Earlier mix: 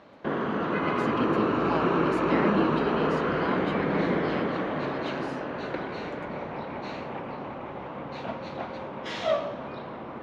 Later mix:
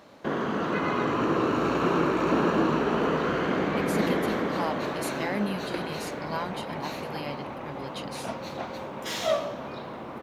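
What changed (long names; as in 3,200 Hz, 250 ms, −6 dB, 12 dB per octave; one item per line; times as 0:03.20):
speech: entry +2.90 s
master: remove low-pass filter 3,300 Hz 12 dB per octave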